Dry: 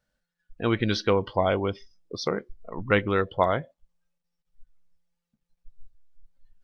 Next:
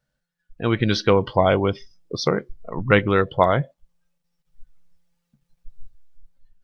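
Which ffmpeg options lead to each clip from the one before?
ffmpeg -i in.wav -af "equalizer=frequency=140:width_type=o:width=0.34:gain=9,dynaudnorm=framelen=320:gausssize=5:maxgain=8.5dB" out.wav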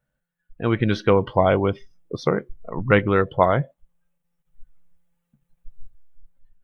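ffmpeg -i in.wav -af "equalizer=frequency=4900:width_type=o:width=0.92:gain=-13.5" out.wav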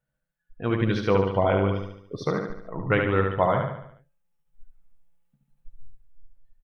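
ffmpeg -i in.wav -filter_complex "[0:a]flanger=delay=6.1:depth=4.4:regen=-55:speed=0.39:shape=sinusoidal,asplit=2[link_01][link_02];[link_02]aecho=0:1:72|144|216|288|360|432:0.631|0.315|0.158|0.0789|0.0394|0.0197[link_03];[link_01][link_03]amix=inputs=2:normalize=0,volume=-1.5dB" out.wav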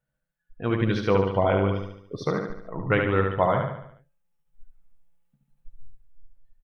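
ffmpeg -i in.wav -af anull out.wav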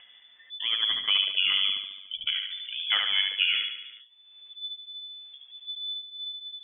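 ffmpeg -i in.wav -af "acompressor=mode=upward:threshold=-26dB:ratio=2.5,lowpass=frequency=3000:width_type=q:width=0.5098,lowpass=frequency=3000:width_type=q:width=0.6013,lowpass=frequency=3000:width_type=q:width=0.9,lowpass=frequency=3000:width_type=q:width=2.563,afreqshift=-3500,volume=-3.5dB" out.wav

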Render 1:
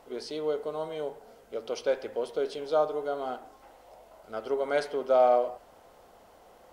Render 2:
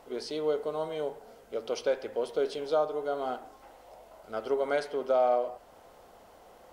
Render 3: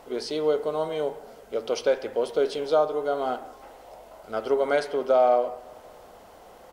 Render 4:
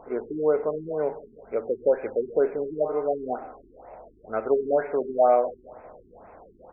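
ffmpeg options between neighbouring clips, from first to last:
ffmpeg -i in.wav -af "alimiter=limit=-18.5dB:level=0:latency=1:release=448,volume=1dB" out.wav
ffmpeg -i in.wav -filter_complex "[0:a]asplit=2[link_01][link_02];[link_02]adelay=186,lowpass=frequency=2000:poles=1,volume=-21.5dB,asplit=2[link_03][link_04];[link_04]adelay=186,lowpass=frequency=2000:poles=1,volume=0.55,asplit=2[link_05][link_06];[link_06]adelay=186,lowpass=frequency=2000:poles=1,volume=0.55,asplit=2[link_07][link_08];[link_08]adelay=186,lowpass=frequency=2000:poles=1,volume=0.55[link_09];[link_01][link_03][link_05][link_07][link_09]amix=inputs=5:normalize=0,volume=5.5dB" out.wav
ffmpeg -i in.wav -af "afftfilt=real='re*lt(b*sr/1024,400*pow(2700/400,0.5+0.5*sin(2*PI*2.1*pts/sr)))':imag='im*lt(b*sr/1024,400*pow(2700/400,0.5+0.5*sin(2*PI*2.1*pts/sr)))':win_size=1024:overlap=0.75,volume=1.5dB" out.wav

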